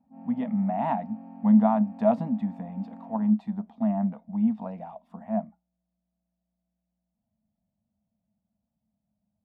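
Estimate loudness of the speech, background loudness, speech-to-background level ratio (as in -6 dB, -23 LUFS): -26.5 LUFS, -45.5 LUFS, 19.0 dB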